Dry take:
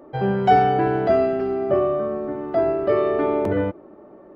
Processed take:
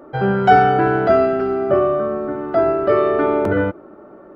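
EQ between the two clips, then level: peaking EQ 1.4 kHz +13 dB 0.23 oct; +3.5 dB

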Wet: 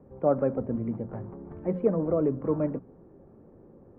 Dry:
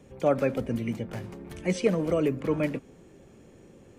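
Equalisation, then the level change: low-pass 1.2 kHz 24 dB/octave; hum notches 60/120/180 Hz; 0.0 dB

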